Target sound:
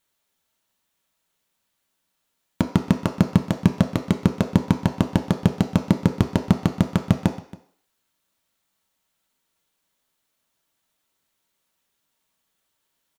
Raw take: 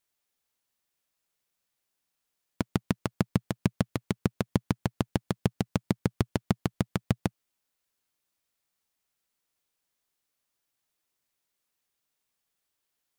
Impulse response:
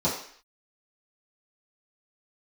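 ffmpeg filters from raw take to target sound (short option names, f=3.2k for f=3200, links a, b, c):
-filter_complex "[0:a]acontrast=79,aecho=1:1:276:0.0944,asplit=2[a][b];[1:a]atrim=start_sample=2205,lowshelf=f=300:g=-11[c];[b][c]afir=irnorm=-1:irlink=0,volume=-14dB[d];[a][d]amix=inputs=2:normalize=0"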